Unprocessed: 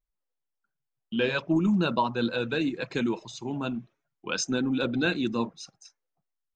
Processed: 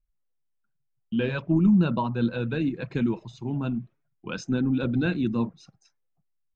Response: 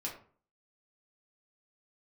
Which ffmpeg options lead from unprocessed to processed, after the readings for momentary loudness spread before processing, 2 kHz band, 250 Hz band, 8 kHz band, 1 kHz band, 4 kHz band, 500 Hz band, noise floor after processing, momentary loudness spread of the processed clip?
11 LU, −4.0 dB, +3.5 dB, below −10 dB, −3.5 dB, −8.0 dB, −2.0 dB, −75 dBFS, 12 LU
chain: -af "bass=frequency=250:gain=13,treble=frequency=4000:gain=-11,volume=-3.5dB"

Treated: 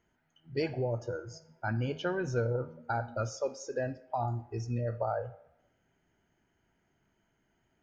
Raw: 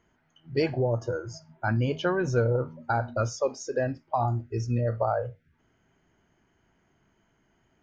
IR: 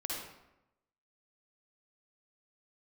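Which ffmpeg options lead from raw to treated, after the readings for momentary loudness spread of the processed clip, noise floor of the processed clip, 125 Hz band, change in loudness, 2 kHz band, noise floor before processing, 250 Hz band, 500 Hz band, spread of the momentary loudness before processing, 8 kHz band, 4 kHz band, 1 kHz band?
7 LU, −76 dBFS, −6.5 dB, −6.0 dB, −5.5 dB, −70 dBFS, −6.5 dB, −6.0 dB, 7 LU, can't be measured, −5.5 dB, −6.5 dB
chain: -filter_complex "[0:a]bandreject=frequency=1100:width=7.5,asplit=2[link_01][link_02];[link_02]highpass=400[link_03];[1:a]atrim=start_sample=2205[link_04];[link_03][link_04]afir=irnorm=-1:irlink=0,volume=-17dB[link_05];[link_01][link_05]amix=inputs=2:normalize=0,volume=-6.5dB"

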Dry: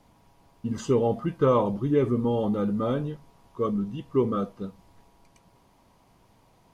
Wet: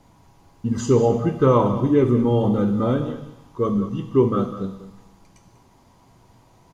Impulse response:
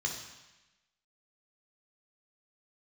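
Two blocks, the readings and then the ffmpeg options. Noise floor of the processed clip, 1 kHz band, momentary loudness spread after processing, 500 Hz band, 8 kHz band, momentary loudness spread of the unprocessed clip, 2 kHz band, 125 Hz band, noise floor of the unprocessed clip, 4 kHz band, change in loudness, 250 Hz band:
−55 dBFS, +5.0 dB, 14 LU, +5.5 dB, can't be measured, 13 LU, +5.0 dB, +8.0 dB, −61 dBFS, +4.5 dB, +6.0 dB, +6.5 dB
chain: -filter_complex "[0:a]aecho=1:1:194:0.2,asplit=2[link_01][link_02];[1:a]atrim=start_sample=2205,highshelf=frequency=6000:gain=8[link_03];[link_02][link_03]afir=irnorm=-1:irlink=0,volume=-11dB[link_04];[link_01][link_04]amix=inputs=2:normalize=0,volume=6.5dB"

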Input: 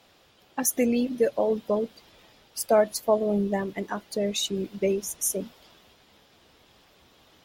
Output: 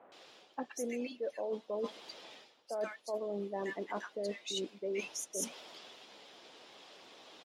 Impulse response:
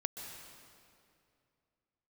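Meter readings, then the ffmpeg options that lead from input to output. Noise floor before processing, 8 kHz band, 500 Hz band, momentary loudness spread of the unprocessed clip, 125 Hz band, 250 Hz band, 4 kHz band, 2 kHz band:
−60 dBFS, −12.0 dB, −12.5 dB, 11 LU, below −15 dB, −15.5 dB, −9.0 dB, −7.5 dB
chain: -filter_complex "[0:a]highpass=350,lowpass=6900,acrossover=split=1500[link_01][link_02];[link_02]adelay=120[link_03];[link_01][link_03]amix=inputs=2:normalize=0,areverse,acompressor=threshold=-39dB:ratio=16,areverse,volume=4.5dB"

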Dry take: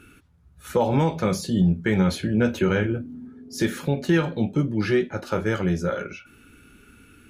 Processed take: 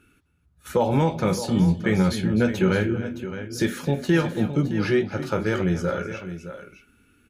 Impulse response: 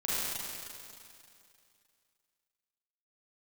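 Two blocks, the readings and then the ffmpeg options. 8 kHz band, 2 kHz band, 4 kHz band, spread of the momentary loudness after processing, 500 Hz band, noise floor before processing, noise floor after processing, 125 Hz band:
+0.5 dB, +0.5 dB, +0.5 dB, 12 LU, +0.5 dB, −54 dBFS, −63 dBFS, +0.5 dB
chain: -af "agate=range=-9dB:threshold=-44dB:ratio=16:detection=peak,aecho=1:1:257|616:0.188|0.266"

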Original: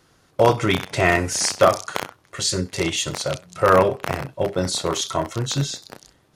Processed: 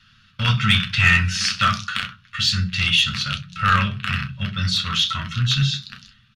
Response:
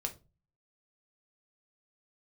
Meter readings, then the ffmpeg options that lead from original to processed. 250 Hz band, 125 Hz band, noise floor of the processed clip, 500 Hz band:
−2.0 dB, +5.5 dB, −55 dBFS, −25.0 dB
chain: -filter_complex "[0:a]firequalizer=gain_entry='entry(210,0);entry(310,-28);entry(550,-28);entry(820,-27);entry(1300,5);entry(2000,0);entry(2800,11);entry(7800,-15);entry(12000,-17)':delay=0.05:min_phase=1,acontrast=63[link_01];[1:a]atrim=start_sample=2205,asetrate=70560,aresample=44100[link_02];[link_01][link_02]afir=irnorm=-1:irlink=0"

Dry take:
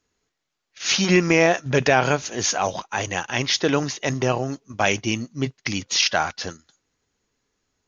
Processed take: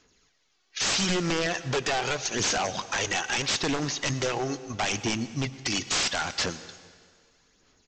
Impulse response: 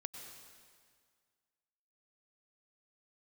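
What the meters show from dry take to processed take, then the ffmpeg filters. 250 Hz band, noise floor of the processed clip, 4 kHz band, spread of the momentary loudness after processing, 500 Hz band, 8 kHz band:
−7.0 dB, −69 dBFS, −3.0 dB, 6 LU, −9.0 dB, can't be measured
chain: -filter_complex "[0:a]lowpass=5400,equalizer=frequency=83:width_type=o:width=0.99:gain=-4,aphaser=in_gain=1:out_gain=1:delay=2.7:decay=0.48:speed=0.78:type=sinusoidal,acompressor=threshold=-32dB:ratio=3,highshelf=frequency=3400:gain=11.5,aresample=16000,aeval=exprs='0.0501*(abs(mod(val(0)/0.0501+3,4)-2)-1)':channel_layout=same,aresample=44100,asplit=2[link_01][link_02];[link_02]adelay=110,highpass=300,lowpass=3400,asoftclip=type=hard:threshold=-32dB,volume=-22dB[link_03];[link_01][link_03]amix=inputs=2:normalize=0,asplit=2[link_04][link_05];[1:a]atrim=start_sample=2205[link_06];[link_05][link_06]afir=irnorm=-1:irlink=0,volume=-4dB[link_07];[link_04][link_07]amix=inputs=2:normalize=0,volume=2.5dB"

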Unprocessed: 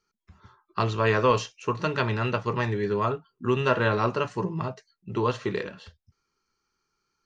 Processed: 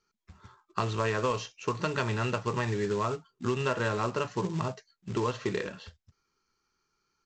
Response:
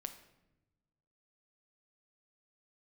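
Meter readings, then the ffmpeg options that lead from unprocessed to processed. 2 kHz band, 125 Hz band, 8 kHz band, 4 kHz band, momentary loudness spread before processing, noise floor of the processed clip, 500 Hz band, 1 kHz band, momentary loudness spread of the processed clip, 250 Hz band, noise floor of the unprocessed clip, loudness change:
−5.0 dB, −4.0 dB, can't be measured, −3.5 dB, 11 LU, −80 dBFS, −5.0 dB, −5.0 dB, 7 LU, −4.0 dB, −80 dBFS, −4.5 dB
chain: -af "aresample=16000,acrusher=bits=4:mode=log:mix=0:aa=0.000001,aresample=44100,acompressor=threshold=-26dB:ratio=4"

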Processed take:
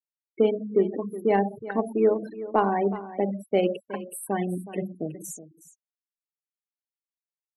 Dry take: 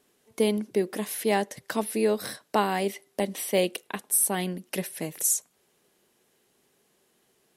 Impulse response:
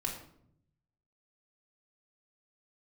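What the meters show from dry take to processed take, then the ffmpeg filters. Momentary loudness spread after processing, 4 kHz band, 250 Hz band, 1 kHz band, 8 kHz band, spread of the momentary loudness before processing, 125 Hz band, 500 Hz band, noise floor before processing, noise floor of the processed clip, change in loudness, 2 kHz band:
12 LU, −11.0 dB, +2.0 dB, +2.5 dB, −15.0 dB, 8 LU, +2.0 dB, +3.5 dB, −69 dBFS, below −85 dBFS, +0.5 dB, −3.5 dB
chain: -filter_complex "[0:a]asplit=2[link_01][link_02];[1:a]atrim=start_sample=2205,highshelf=frequency=5400:gain=-3[link_03];[link_02][link_03]afir=irnorm=-1:irlink=0,volume=-3.5dB[link_04];[link_01][link_04]amix=inputs=2:normalize=0,afftfilt=real='re*gte(hypot(re,im),0.0891)':imag='im*gte(hypot(re,im),0.0891)':win_size=1024:overlap=0.75,aeval=exprs='0.531*(cos(1*acos(clip(val(0)/0.531,-1,1)))-cos(1*PI/2))+0.0299*(cos(3*acos(clip(val(0)/0.531,-1,1)))-cos(3*PI/2))':channel_layout=same,lowpass=frequency=1300:poles=1,aecho=1:1:369:0.178"

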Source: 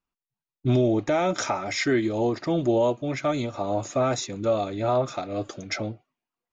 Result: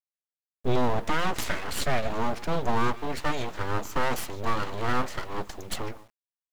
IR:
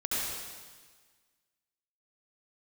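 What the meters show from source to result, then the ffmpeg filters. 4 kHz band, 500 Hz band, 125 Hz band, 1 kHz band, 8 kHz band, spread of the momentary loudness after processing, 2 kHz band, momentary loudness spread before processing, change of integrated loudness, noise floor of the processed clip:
−1.0 dB, −7.5 dB, −4.5 dB, +0.5 dB, can't be measured, 9 LU, +1.0 dB, 9 LU, −4.5 dB, below −85 dBFS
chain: -filter_complex "[0:a]asplit=2[link_01][link_02];[link_02]adelay=150,highpass=300,lowpass=3400,asoftclip=type=hard:threshold=-21dB,volume=-15dB[link_03];[link_01][link_03]amix=inputs=2:normalize=0,aeval=exprs='abs(val(0))':channel_layout=same,acrusher=bits=7:dc=4:mix=0:aa=0.000001"

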